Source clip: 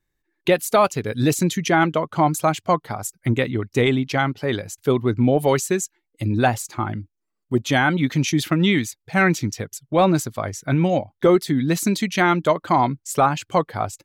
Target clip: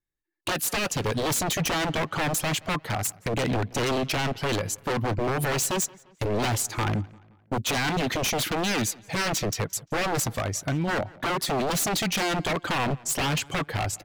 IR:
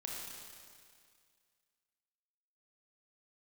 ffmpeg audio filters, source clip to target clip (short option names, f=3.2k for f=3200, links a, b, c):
-filter_complex "[0:a]agate=range=-18dB:threshold=-41dB:ratio=16:detection=peak,alimiter=limit=-16dB:level=0:latency=1:release=53,asplit=3[a][b][c];[a]afade=t=out:st=10.41:d=0.02[d];[b]acompressor=threshold=-27dB:ratio=12,afade=t=in:st=10.41:d=0.02,afade=t=out:st=10.87:d=0.02[e];[c]afade=t=in:st=10.87:d=0.02[f];[d][e][f]amix=inputs=3:normalize=0,aeval=exprs='0.0562*(abs(mod(val(0)/0.0562+3,4)-2)-1)':c=same,asplit=2[g][h];[h]adelay=174,lowpass=f=4.3k:p=1,volume=-23dB,asplit=2[i][j];[j]adelay=174,lowpass=f=4.3k:p=1,volume=0.47,asplit=2[k][l];[l]adelay=174,lowpass=f=4.3k:p=1,volume=0.47[m];[i][k][m]amix=inputs=3:normalize=0[n];[g][n]amix=inputs=2:normalize=0,volume=4.5dB"